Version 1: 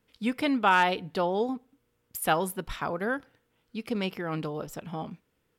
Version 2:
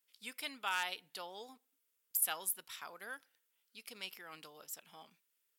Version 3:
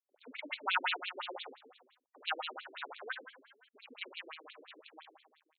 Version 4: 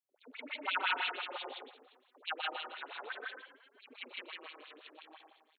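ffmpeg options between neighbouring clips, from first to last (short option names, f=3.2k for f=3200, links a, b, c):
-af "aderivative"
-af "aecho=1:1:70|154|254.8|375.8|520.9:0.631|0.398|0.251|0.158|0.1,acrusher=bits=8:dc=4:mix=0:aa=0.000001,afftfilt=real='re*between(b*sr/1024,320*pow(3200/320,0.5+0.5*sin(2*PI*5.8*pts/sr))/1.41,320*pow(3200/320,0.5+0.5*sin(2*PI*5.8*pts/sr))*1.41)':imag='im*between(b*sr/1024,320*pow(3200/320,0.5+0.5*sin(2*PI*5.8*pts/sr))/1.41,320*pow(3200/320,0.5+0.5*sin(2*PI*5.8*pts/sr))*1.41)':win_size=1024:overlap=0.75,volume=9.5dB"
-af "aecho=1:1:125.4|157.4|271.1:0.447|1|0.282,volume=-3dB"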